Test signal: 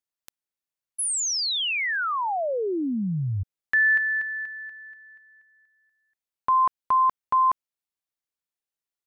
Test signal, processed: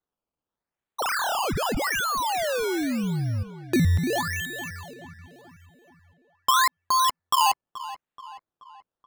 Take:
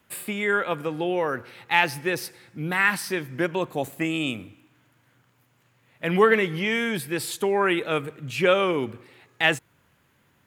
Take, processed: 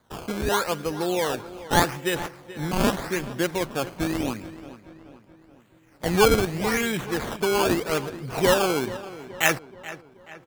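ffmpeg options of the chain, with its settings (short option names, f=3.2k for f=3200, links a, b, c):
-filter_complex "[0:a]acrusher=samples=16:mix=1:aa=0.000001:lfo=1:lforange=16:lforate=0.83,asplit=2[a][b];[b]adelay=429,lowpass=f=3.5k:p=1,volume=-15dB,asplit=2[c][d];[d]adelay=429,lowpass=f=3.5k:p=1,volume=0.51,asplit=2[e][f];[f]adelay=429,lowpass=f=3.5k:p=1,volume=0.51,asplit=2[g][h];[h]adelay=429,lowpass=f=3.5k:p=1,volume=0.51,asplit=2[i][j];[j]adelay=429,lowpass=f=3.5k:p=1,volume=0.51[k];[a][c][e][g][i][k]amix=inputs=6:normalize=0"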